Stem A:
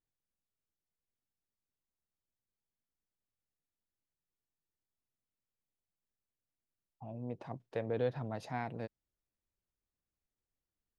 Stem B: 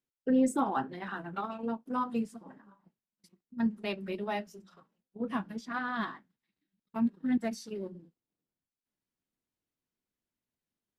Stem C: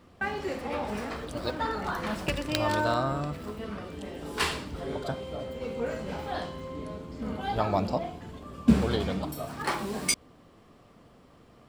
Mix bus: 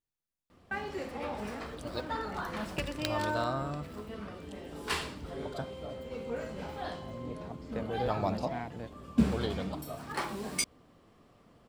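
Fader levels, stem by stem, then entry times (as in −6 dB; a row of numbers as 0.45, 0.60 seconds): −1.5 dB, muted, −5.0 dB; 0.00 s, muted, 0.50 s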